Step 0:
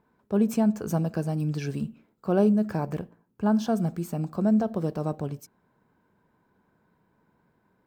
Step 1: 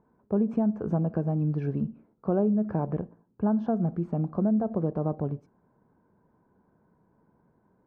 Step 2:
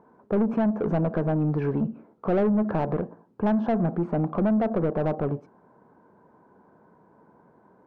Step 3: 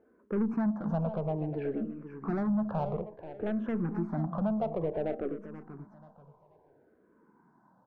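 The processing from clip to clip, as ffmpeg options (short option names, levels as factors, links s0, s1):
-af "acompressor=threshold=0.0562:ratio=3,lowpass=1000,volume=1.33"
-filter_complex "[0:a]asplit=2[s0][s1];[s1]highpass=f=720:p=1,volume=14.1,asoftclip=type=tanh:threshold=0.188[s2];[s0][s2]amix=inputs=2:normalize=0,lowpass=f=1000:p=1,volume=0.501"
-filter_complex "[0:a]asplit=2[s0][s1];[s1]aecho=0:1:483|966|1449:0.282|0.0789|0.0221[s2];[s0][s2]amix=inputs=2:normalize=0,asplit=2[s3][s4];[s4]afreqshift=-0.58[s5];[s3][s5]amix=inputs=2:normalize=1,volume=0.562"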